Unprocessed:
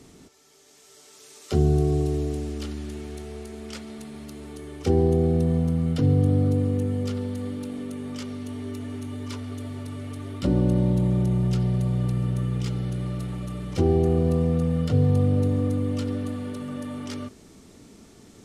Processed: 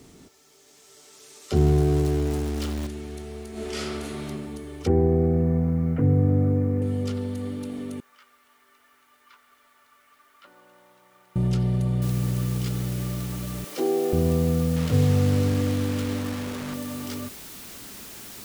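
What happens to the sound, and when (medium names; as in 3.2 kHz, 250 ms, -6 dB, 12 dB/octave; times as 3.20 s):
1.56–2.87 s: jump at every zero crossing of -30 dBFS
3.51–4.26 s: reverb throw, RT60 1.3 s, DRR -8.5 dB
4.87–6.82 s: steep low-pass 2.3 kHz 48 dB/octave
8.00–11.36 s: ladder band-pass 1.6 kHz, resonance 40%
12.02 s: noise floor step -68 dB -42 dB
13.64–14.13 s: high-pass 300 Hz 24 dB/octave
14.76–16.74 s: send-on-delta sampling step -30.5 dBFS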